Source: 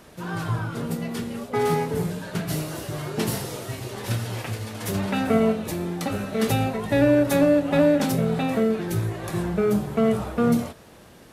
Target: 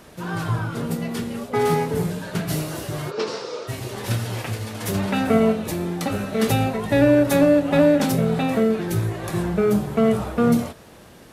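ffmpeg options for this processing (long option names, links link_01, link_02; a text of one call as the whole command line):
ffmpeg -i in.wav -filter_complex "[0:a]asplit=3[link_01][link_02][link_03];[link_01]afade=type=out:start_time=3.1:duration=0.02[link_04];[link_02]highpass=450,equalizer=frequency=470:width_type=q:width=4:gain=9,equalizer=frequency=730:width_type=q:width=4:gain=-7,equalizer=frequency=1200:width_type=q:width=4:gain=4,equalizer=frequency=1900:width_type=q:width=4:gain=-6,equalizer=frequency=3100:width_type=q:width=4:gain=-5,equalizer=frequency=5200:width_type=q:width=4:gain=3,lowpass=frequency=5400:width=0.5412,lowpass=frequency=5400:width=1.3066,afade=type=in:start_time=3.1:duration=0.02,afade=type=out:start_time=3.67:duration=0.02[link_05];[link_03]afade=type=in:start_time=3.67:duration=0.02[link_06];[link_04][link_05][link_06]amix=inputs=3:normalize=0,volume=2.5dB" out.wav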